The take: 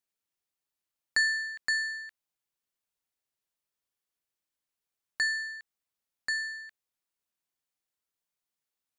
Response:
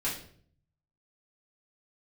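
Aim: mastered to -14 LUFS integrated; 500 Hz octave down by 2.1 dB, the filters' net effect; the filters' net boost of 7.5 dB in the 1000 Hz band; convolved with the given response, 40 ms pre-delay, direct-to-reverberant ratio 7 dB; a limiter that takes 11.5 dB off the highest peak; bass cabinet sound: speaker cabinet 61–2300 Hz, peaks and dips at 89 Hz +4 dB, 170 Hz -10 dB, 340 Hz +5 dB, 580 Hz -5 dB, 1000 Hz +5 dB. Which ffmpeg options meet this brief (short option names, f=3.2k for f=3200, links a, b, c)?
-filter_complex "[0:a]equalizer=f=500:t=o:g=-4,equalizer=f=1k:t=o:g=7.5,alimiter=level_in=1dB:limit=-24dB:level=0:latency=1,volume=-1dB,asplit=2[a][b];[1:a]atrim=start_sample=2205,adelay=40[c];[b][c]afir=irnorm=-1:irlink=0,volume=-13dB[d];[a][d]amix=inputs=2:normalize=0,highpass=f=61:w=0.5412,highpass=f=61:w=1.3066,equalizer=f=89:t=q:w=4:g=4,equalizer=f=170:t=q:w=4:g=-10,equalizer=f=340:t=q:w=4:g=5,equalizer=f=580:t=q:w=4:g=-5,equalizer=f=1k:t=q:w=4:g=5,lowpass=f=2.3k:w=0.5412,lowpass=f=2.3k:w=1.3066,volume=20dB"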